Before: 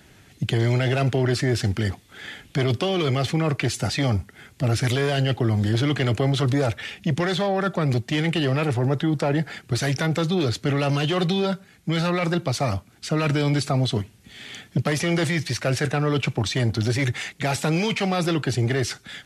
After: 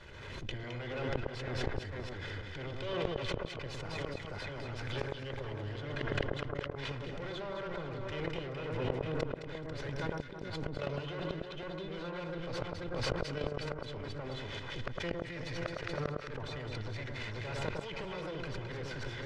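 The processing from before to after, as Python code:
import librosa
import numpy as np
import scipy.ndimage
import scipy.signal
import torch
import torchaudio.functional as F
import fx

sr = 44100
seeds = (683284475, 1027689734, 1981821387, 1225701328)

y = fx.lower_of_two(x, sr, delay_ms=2.0)
y = y + 10.0 ** (-10.5 / 20.0) * np.pad(y, (int(488 * sr / 1000.0), 0))[:len(y)]
y = fx.level_steps(y, sr, step_db=21)
y = fx.low_shelf(y, sr, hz=460.0, db=-11.0)
y = fx.gate_flip(y, sr, shuts_db=-26.0, range_db=-34)
y = scipy.signal.sosfilt(scipy.signal.butter(2, 4200.0, 'lowpass', fs=sr, output='sos'), y)
y = fx.tilt_eq(y, sr, slope=-2.0)
y = fx.echo_alternate(y, sr, ms=107, hz=1500.0, feedback_pct=63, wet_db=-2.5)
y = fx.pre_swell(y, sr, db_per_s=30.0)
y = y * 10.0 ** (3.0 / 20.0)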